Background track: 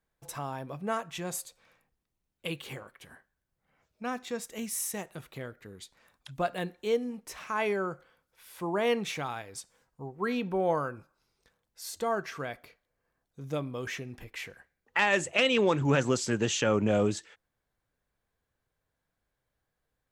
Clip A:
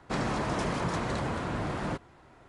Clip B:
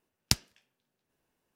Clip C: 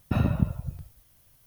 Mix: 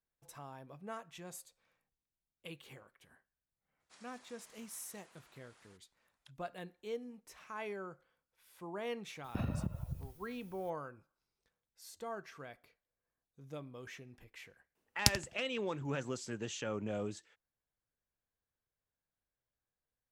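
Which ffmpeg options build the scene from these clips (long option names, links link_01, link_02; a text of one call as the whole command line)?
ffmpeg -i bed.wav -i cue0.wav -i cue1.wav -i cue2.wav -filter_complex "[0:a]volume=-13dB[link_01];[1:a]aderivative[link_02];[3:a]acompressor=threshold=-27dB:ratio=5:attack=4.6:release=217:knee=6:detection=peak[link_03];[2:a]asplit=2[link_04][link_05];[link_05]adelay=85,lowpass=frequency=2900:poles=1,volume=-11dB,asplit=2[link_06][link_07];[link_07]adelay=85,lowpass=frequency=2900:poles=1,volume=0.28,asplit=2[link_08][link_09];[link_09]adelay=85,lowpass=frequency=2900:poles=1,volume=0.28[link_10];[link_04][link_06][link_08][link_10]amix=inputs=4:normalize=0[link_11];[link_02]atrim=end=2.48,asetpts=PTS-STARTPTS,volume=-16dB,afade=type=in:duration=0.004:curve=hsin,afade=type=out:start_time=2.476:duration=0.004:curve=hsin,adelay=3800[link_12];[link_03]atrim=end=1.46,asetpts=PTS-STARTPTS,volume=-5dB,afade=type=in:duration=0.004:curve=hsin,afade=type=out:start_time=1.456:duration=0.004:curve=hsin,adelay=9240[link_13];[link_11]atrim=end=1.55,asetpts=PTS-STARTPTS,volume=-2dB,afade=type=in:duration=0.004:curve=hsin,afade=type=out:start_time=1.546:duration=0.004:curve=hsin,adelay=14750[link_14];[link_01][link_12][link_13][link_14]amix=inputs=4:normalize=0" out.wav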